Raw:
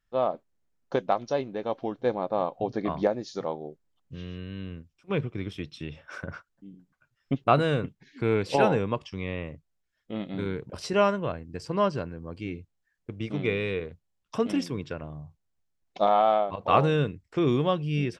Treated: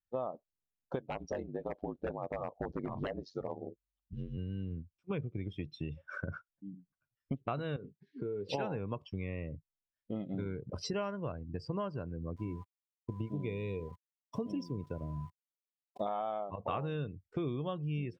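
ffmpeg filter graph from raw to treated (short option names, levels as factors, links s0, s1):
-filter_complex "[0:a]asettb=1/sr,asplit=3[s0][s1][s2];[s0]atrim=end=0.994[s3];[s1]atrim=start=0.99:end=4.38,asetpts=PTS-STARTPTS,afade=t=in:d=0.004:c=qsin,afade=t=out:st=3.386:d=0.004:c=qsin,aeval=exprs='val(0)*sin(2*PI*48*n/s)':c=same,aeval=exprs='0.0794*(abs(mod(val(0)/0.0794+3,4)-2)-1)':c=same[s4];[s2]atrim=start=4.376[s5];[s3][s4]acrossfade=d=0.004:c1=hsin:c2=qsin[s6];[s6][s5]acrossfade=d=0.004:c1=qsin:c2=hsin,asettb=1/sr,asplit=3[s7][s8][s9];[s7]atrim=end=7.764[s10];[s8]atrim=start=7.76:end=8.49,asetpts=PTS-STARTPTS,afade=t=in:d=0.004:c=qsin,afade=t=out:st=0.726:d=0.004:c=qsin,highpass=130,equalizer=f=410:t=q:w=4:g=9,equalizer=f=670:t=q:w=4:g=-6,equalizer=f=2300:t=q:w=4:g=-4,lowpass=f=5100:w=0.5412,lowpass=f=5100:w=1.3066,asplit=2[s11][s12];[s12]adelay=20,volume=0.282[s13];[s11][s13]amix=inputs=2:normalize=0,atrim=end_sample=32193,acompressor=threshold=0.0141:ratio=3:attack=3.2:release=140:knee=1:detection=peak[s14];[s9]atrim=start=8.486[s15];[s10][s14]acrossfade=d=0.004:c1=hsin:c2=qsin[s16];[s16][s15]acrossfade=d=0.004:c1=qsin:c2=hsin,asettb=1/sr,asplit=3[s17][s18][s19];[s17]atrim=end=12.364[s20];[s18]atrim=start=12.36:end=16.06,asetpts=PTS-STARTPTS,afade=t=in:d=0.004:c=qsin,afade=t=out:st=3.696:d=0.004:c=qsin,aeval=exprs='val(0)+0.00794*sin(2*PI*1000*n/s)':c=same,equalizer=f=1500:t=o:w=1.9:g=-9,aeval=exprs='val(0)*gte(abs(val(0)),0.00668)':c=same[s21];[s19]atrim=start=16.056[s22];[s20][s21]acrossfade=d=0.004:c1=hsin:c2=qsin[s23];[s23][s22]acrossfade=d=0.004:c1=qsin:c2=hsin,afftdn=nr=19:nf=-40,equalizer=f=95:w=0.73:g=5,acompressor=threshold=0.0224:ratio=6,volume=0.891"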